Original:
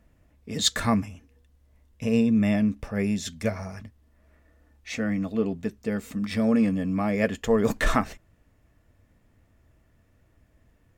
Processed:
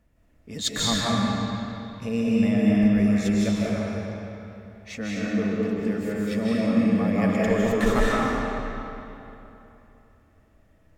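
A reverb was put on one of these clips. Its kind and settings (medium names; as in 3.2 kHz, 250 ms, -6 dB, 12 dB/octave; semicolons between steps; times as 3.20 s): algorithmic reverb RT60 3.1 s, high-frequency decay 0.75×, pre-delay 115 ms, DRR -6 dB; trim -4.5 dB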